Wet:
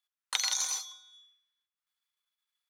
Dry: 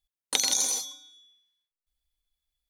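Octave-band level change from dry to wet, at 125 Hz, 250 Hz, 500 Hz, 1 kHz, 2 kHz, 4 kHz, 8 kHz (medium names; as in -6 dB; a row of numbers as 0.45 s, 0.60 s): no reading, under -25 dB, -16.0 dB, -2.5 dB, -1.0 dB, -4.0 dB, -6.0 dB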